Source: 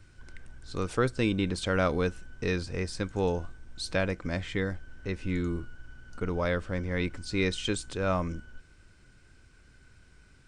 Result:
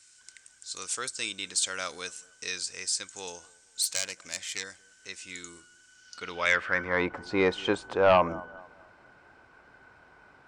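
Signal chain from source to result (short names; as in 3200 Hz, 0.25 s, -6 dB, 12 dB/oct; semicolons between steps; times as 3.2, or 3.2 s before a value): 3.82–4.64 self-modulated delay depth 0.2 ms; band-pass sweep 7500 Hz -> 830 Hz, 5.92–7.08; analogue delay 0.226 s, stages 2048, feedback 35%, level -23.5 dB; sine folder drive 5 dB, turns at -22 dBFS; gain +9 dB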